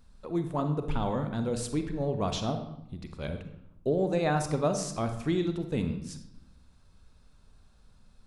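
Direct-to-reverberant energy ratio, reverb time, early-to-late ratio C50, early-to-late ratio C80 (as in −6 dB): 7.0 dB, 0.80 s, 8.5 dB, 11.5 dB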